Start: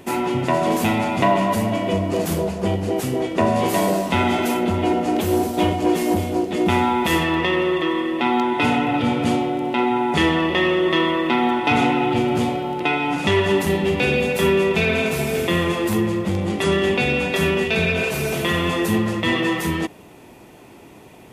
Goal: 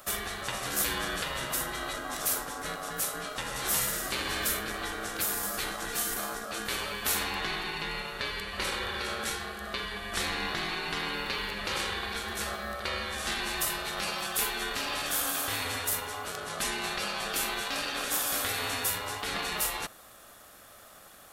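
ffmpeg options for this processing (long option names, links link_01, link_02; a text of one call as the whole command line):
ffmpeg -i in.wav -af "crystalizer=i=4:c=0,afftfilt=real='re*lt(hypot(re,im),0.447)':imag='im*lt(hypot(re,im),0.447)':win_size=1024:overlap=0.75,aeval=exprs='val(0)*sin(2*PI*940*n/s)':channel_layout=same,volume=-8dB" out.wav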